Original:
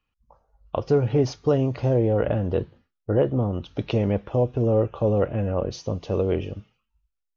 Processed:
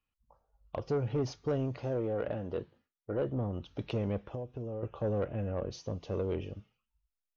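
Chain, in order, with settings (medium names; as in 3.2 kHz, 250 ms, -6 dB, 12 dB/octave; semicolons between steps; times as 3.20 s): 1.77–3.22 s: bass shelf 130 Hz -11.5 dB; 4.30–4.83 s: compression 5:1, threshold -28 dBFS, peak gain reduction 10.5 dB; saturation -15 dBFS, distortion -18 dB; trim -9 dB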